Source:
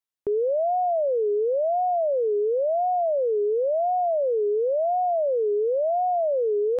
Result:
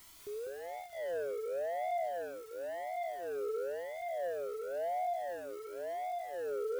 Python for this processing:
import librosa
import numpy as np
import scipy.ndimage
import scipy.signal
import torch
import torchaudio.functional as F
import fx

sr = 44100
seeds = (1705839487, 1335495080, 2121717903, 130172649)

y = fx.fade_in_head(x, sr, length_s=0.78)
y = scipy.signal.sosfilt(scipy.signal.butter(2, 66.0, 'highpass', fs=sr, output='sos'), y)
y = fx.quant_dither(y, sr, seeds[0], bits=8, dither='triangular')
y = fx.low_shelf(y, sr, hz=180.0, db=10.5)
y = fx.rider(y, sr, range_db=4, speed_s=2.0)
y = fx.low_shelf(y, sr, hz=400.0, db=-6.0)
y = y + 10.0 ** (-3.5 / 20.0) * np.pad(y, (int(199 * sr / 1000.0), 0))[:len(y)]
y = 10.0 ** (-22.5 / 20.0) * np.tanh(y / 10.0 ** (-22.5 / 20.0))
y = fx.comb_cascade(y, sr, direction='rising', hz=0.35)
y = y * 10.0 ** (-7.0 / 20.0)